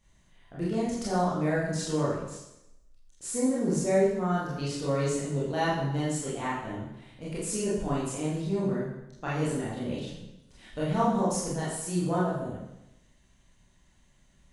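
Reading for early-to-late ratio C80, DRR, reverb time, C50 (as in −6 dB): 4.5 dB, −8.0 dB, 0.90 s, 1.5 dB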